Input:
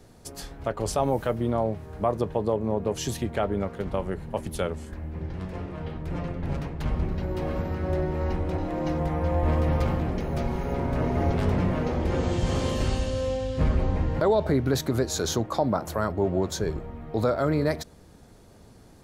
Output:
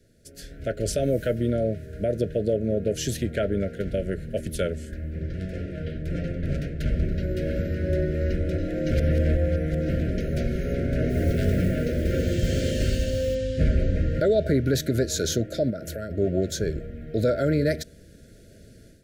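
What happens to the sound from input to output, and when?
8.91–9.89 s: reverse
11.09–13.35 s: modulation noise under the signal 29 dB
15.70–16.11 s: compression 3:1, threshold -30 dBFS
whole clip: Chebyshev band-stop 660–1400 Hz, order 5; level rider gain up to 11 dB; trim -8 dB

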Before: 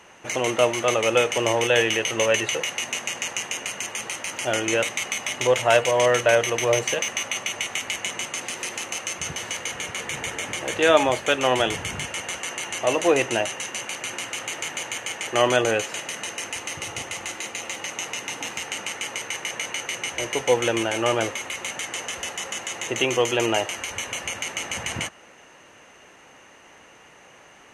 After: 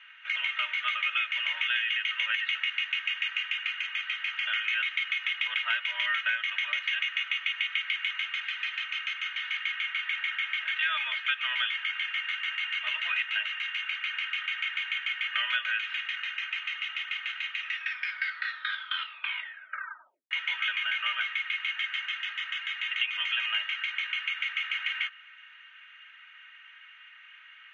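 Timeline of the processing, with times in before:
17.54 s: tape stop 2.77 s
whole clip: Chebyshev band-pass 1.4–3.4 kHz, order 3; comb 3.2 ms, depth 89%; compression, threshold -25 dBFS

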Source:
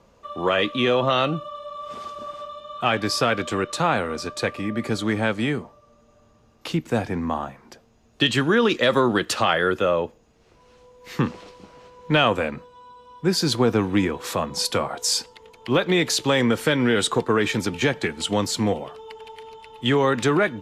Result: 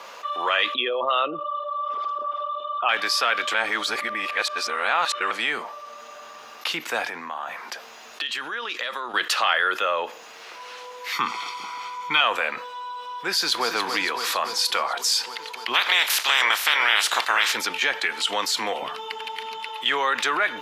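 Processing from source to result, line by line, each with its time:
0.74–2.89 s: resonances exaggerated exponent 2
3.54–5.31 s: reverse
7.09–9.14 s: compression, threshold -34 dBFS
11.12–12.21 s: comb 0.9 ms, depth 99%
13.30–13.71 s: echo throw 280 ms, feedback 65%, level -9.5 dB
15.73–17.52 s: spectral peaks clipped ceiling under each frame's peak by 26 dB
18.82–19.69 s: resonant low shelf 340 Hz +12.5 dB, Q 1.5
whole clip: high-pass 1.1 kHz 12 dB/octave; peaking EQ 8 kHz -7.5 dB 0.99 oct; level flattener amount 50%

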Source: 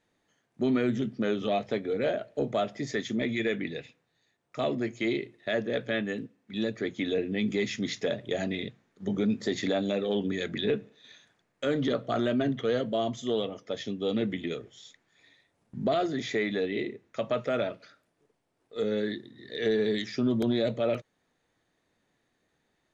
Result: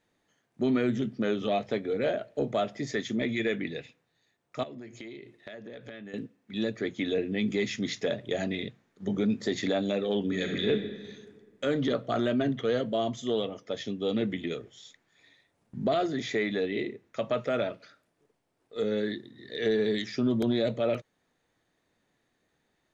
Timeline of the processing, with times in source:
4.63–6.14 s: compression 16:1, threshold -39 dBFS
10.24–10.68 s: reverb throw, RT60 1.7 s, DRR 1.5 dB

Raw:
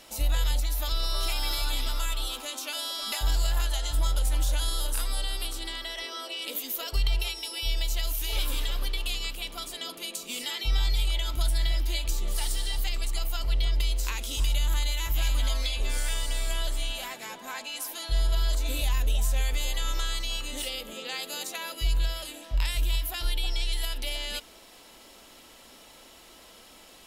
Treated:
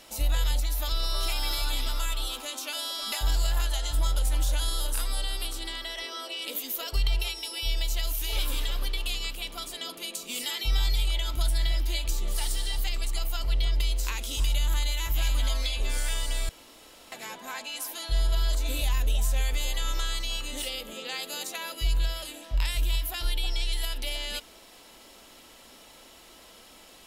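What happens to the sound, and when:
10.35–10.96 s: treble shelf 8.7 kHz +7 dB
16.49–17.12 s: room tone

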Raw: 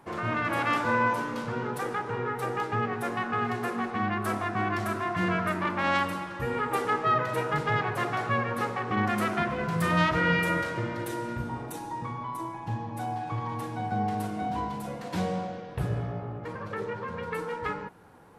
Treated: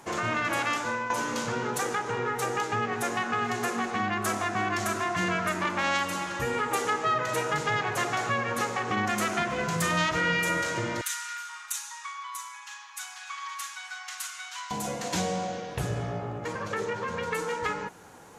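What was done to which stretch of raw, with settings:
0.54–1.10 s: fade out, to -14.5 dB
11.01–14.71 s: elliptic high-pass 1.2 kHz, stop band 70 dB
whole clip: FFT filter 110 Hz 0 dB, 720 Hz +5 dB, 1.1 kHz +4 dB, 3.1 kHz +9 dB; compression 2:1, threshold -28 dBFS; peaking EQ 6.7 kHz +12 dB 0.54 oct

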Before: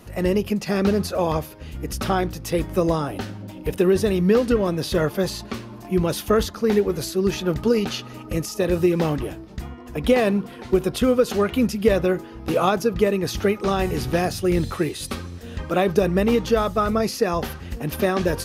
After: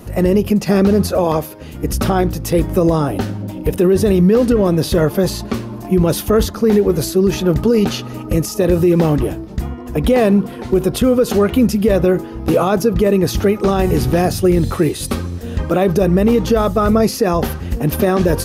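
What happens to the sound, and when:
1.24–1.84 s: high-pass 230 Hz 6 dB/octave
whole clip: tilt shelf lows +5 dB, about 1.2 kHz; peak limiter -11 dBFS; treble shelf 6.4 kHz +9.5 dB; trim +6 dB

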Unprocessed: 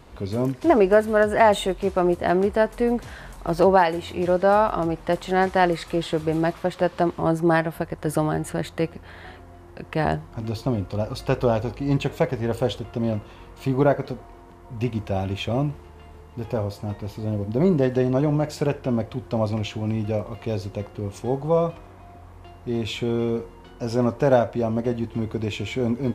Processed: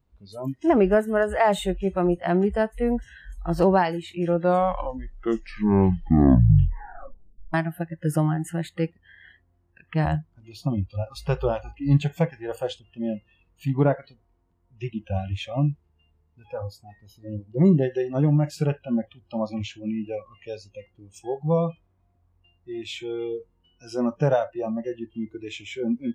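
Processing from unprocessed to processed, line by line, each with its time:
4.18 s: tape stop 3.36 s
whole clip: spectral noise reduction 26 dB; tone controls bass +11 dB, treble +1 dB; trim -4 dB

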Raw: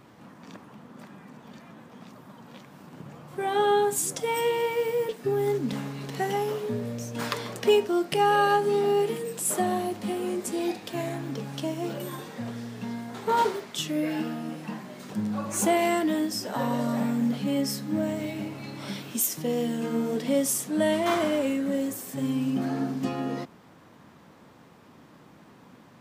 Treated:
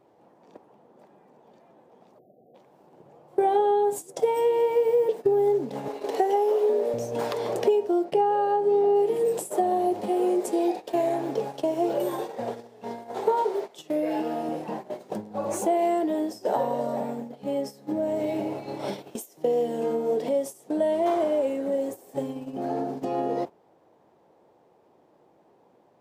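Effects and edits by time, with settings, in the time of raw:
2.19–2.55 s: spectral selection erased 780–11000 Hz
5.88–6.94 s: high-pass 290 Hz 24 dB/octave
8.04–8.96 s: treble shelf 4.6 kHz -9 dB
10.08–14.49 s: bass shelf 230 Hz -8 dB
whole clip: compression 12:1, threshold -32 dBFS; high-order bell 550 Hz +14 dB; gate -31 dBFS, range -16 dB

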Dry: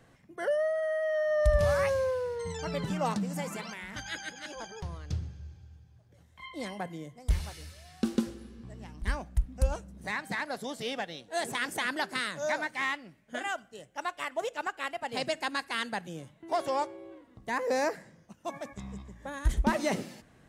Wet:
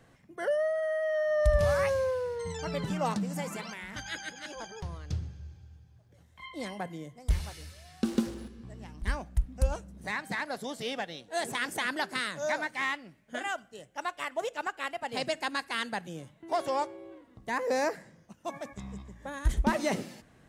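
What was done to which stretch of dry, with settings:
8.08–8.48 s: companding laws mixed up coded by mu

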